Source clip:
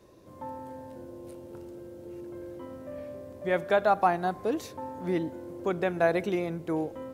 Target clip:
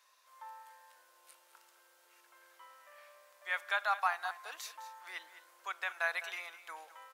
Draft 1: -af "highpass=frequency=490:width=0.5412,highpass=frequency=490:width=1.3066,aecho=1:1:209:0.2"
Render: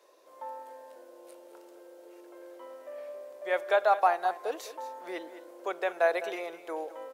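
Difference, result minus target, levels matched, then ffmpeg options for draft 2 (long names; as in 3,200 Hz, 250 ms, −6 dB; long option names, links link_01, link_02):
500 Hz band +12.5 dB
-af "highpass=frequency=1100:width=0.5412,highpass=frequency=1100:width=1.3066,aecho=1:1:209:0.2"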